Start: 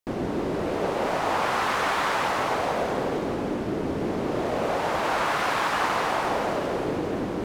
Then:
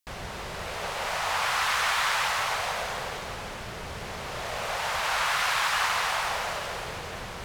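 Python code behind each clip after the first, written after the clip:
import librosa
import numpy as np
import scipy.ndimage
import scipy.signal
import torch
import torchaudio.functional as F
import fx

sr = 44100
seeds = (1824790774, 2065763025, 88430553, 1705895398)

y = fx.tone_stack(x, sr, knobs='10-0-10')
y = y * librosa.db_to_amplitude(6.5)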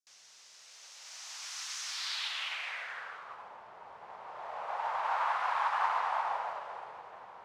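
y = fx.filter_sweep_bandpass(x, sr, from_hz=6000.0, to_hz=900.0, start_s=1.84, end_s=3.52, q=2.7)
y = fx.upward_expand(y, sr, threshold_db=-46.0, expansion=1.5)
y = y * librosa.db_to_amplitude(2.5)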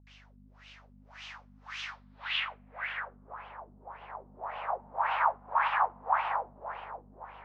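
y = fx.add_hum(x, sr, base_hz=50, snr_db=21)
y = fx.filter_lfo_lowpass(y, sr, shape='sine', hz=1.8, low_hz=220.0, high_hz=3000.0, q=4.3)
y = y * librosa.db_to_amplitude(-1.0)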